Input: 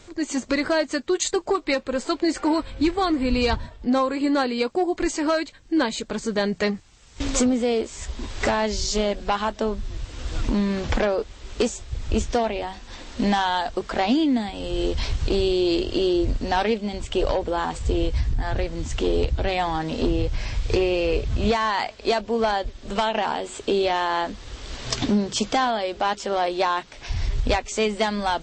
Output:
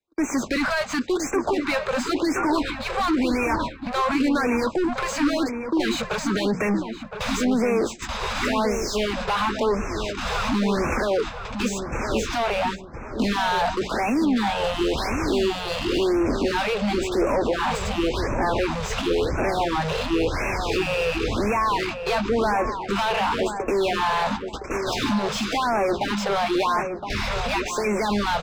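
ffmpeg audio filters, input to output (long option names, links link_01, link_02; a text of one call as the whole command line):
ffmpeg -i in.wav -filter_complex "[0:a]agate=range=-57dB:threshold=-32dB:ratio=16:detection=peak,bandreject=frequency=60:width_type=h:width=6,bandreject=frequency=120:width_type=h:width=6,bandreject=frequency=180:width_type=h:width=6,aecho=1:1:0.8:0.31,acrossover=split=150|1800[link_01][link_02][link_03];[link_02]alimiter=limit=-23.5dB:level=0:latency=1:release=78[link_04];[link_01][link_04][link_03]amix=inputs=3:normalize=0,acrossover=split=220|3000[link_05][link_06][link_07];[link_05]acompressor=threshold=-42dB:ratio=2[link_08];[link_08][link_06][link_07]amix=inputs=3:normalize=0,asoftclip=type=tanh:threshold=-21.5dB,asplit=2[link_09][link_10];[link_10]highpass=frequency=720:poles=1,volume=25dB,asoftclip=type=tanh:threshold=-21.5dB[link_11];[link_09][link_11]amix=inputs=2:normalize=0,lowpass=frequency=1200:poles=1,volume=-6dB,aeval=exprs='0.168*sin(PI/2*1.58*val(0)/0.168)':channel_layout=same,asplit=2[link_12][link_13];[link_13]adelay=1016,lowpass=frequency=1600:poles=1,volume=-7dB,asplit=2[link_14][link_15];[link_15]adelay=1016,lowpass=frequency=1600:poles=1,volume=0.3,asplit=2[link_16][link_17];[link_17]adelay=1016,lowpass=frequency=1600:poles=1,volume=0.3,asplit=2[link_18][link_19];[link_19]adelay=1016,lowpass=frequency=1600:poles=1,volume=0.3[link_20];[link_14][link_16][link_18][link_20]amix=inputs=4:normalize=0[link_21];[link_12][link_21]amix=inputs=2:normalize=0,afftfilt=real='re*(1-between(b*sr/1024,270*pow(3900/270,0.5+0.5*sin(2*PI*0.94*pts/sr))/1.41,270*pow(3900/270,0.5+0.5*sin(2*PI*0.94*pts/sr))*1.41))':imag='im*(1-between(b*sr/1024,270*pow(3900/270,0.5+0.5*sin(2*PI*0.94*pts/sr))/1.41,270*pow(3900/270,0.5+0.5*sin(2*PI*0.94*pts/sr))*1.41))':win_size=1024:overlap=0.75" out.wav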